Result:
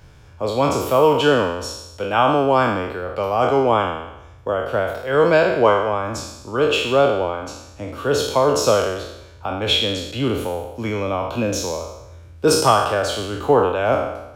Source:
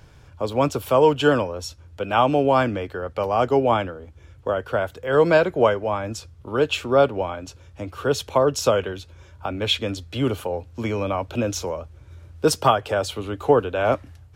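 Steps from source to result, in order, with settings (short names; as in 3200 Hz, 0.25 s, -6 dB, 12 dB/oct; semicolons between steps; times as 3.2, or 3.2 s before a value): spectral trails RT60 0.91 s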